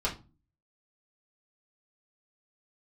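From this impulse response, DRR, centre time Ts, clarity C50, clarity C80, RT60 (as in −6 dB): −7.5 dB, 16 ms, 12.5 dB, 19.5 dB, 0.30 s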